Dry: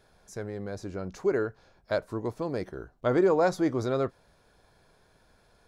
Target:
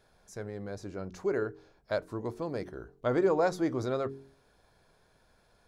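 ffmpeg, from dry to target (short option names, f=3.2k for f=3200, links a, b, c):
-af "bandreject=f=45.27:t=h:w=4,bandreject=f=90.54:t=h:w=4,bandreject=f=135.81:t=h:w=4,bandreject=f=181.08:t=h:w=4,bandreject=f=226.35:t=h:w=4,bandreject=f=271.62:t=h:w=4,bandreject=f=316.89:t=h:w=4,bandreject=f=362.16:t=h:w=4,bandreject=f=407.43:t=h:w=4,bandreject=f=452.7:t=h:w=4,volume=-3dB"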